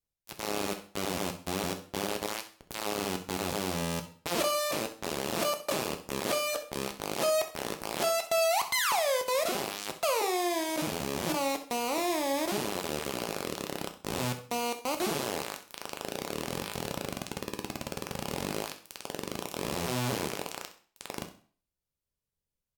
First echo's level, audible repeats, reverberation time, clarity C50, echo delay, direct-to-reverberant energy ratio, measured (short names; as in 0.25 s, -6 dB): -14.5 dB, 1, 0.45 s, 11.0 dB, 65 ms, 5.0 dB